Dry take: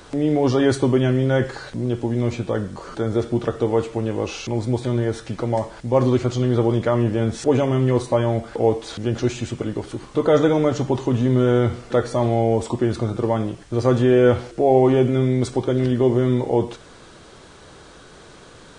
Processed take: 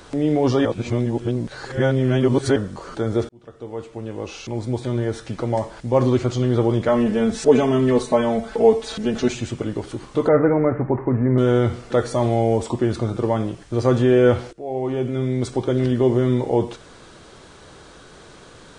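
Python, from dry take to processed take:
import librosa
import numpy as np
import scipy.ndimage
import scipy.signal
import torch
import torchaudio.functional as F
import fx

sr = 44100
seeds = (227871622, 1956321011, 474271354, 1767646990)

y = fx.comb(x, sr, ms=4.6, depth=0.9, at=(6.88, 9.35))
y = fx.steep_lowpass(y, sr, hz=2200.0, slope=72, at=(10.28, 11.38))
y = fx.high_shelf(y, sr, hz=7500.0, db=6.5, at=(11.98, 12.58))
y = fx.edit(y, sr, fx.reverse_span(start_s=0.65, length_s=1.91),
    fx.fade_in_span(start_s=3.29, length_s=2.68, curve='qsin'),
    fx.fade_in_from(start_s=14.53, length_s=1.18, floor_db=-19.0), tone=tone)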